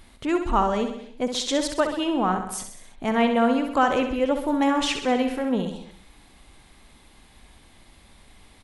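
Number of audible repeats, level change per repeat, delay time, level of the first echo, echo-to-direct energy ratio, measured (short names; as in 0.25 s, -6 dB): 5, -4.5 dB, 65 ms, -8.0 dB, -6.0 dB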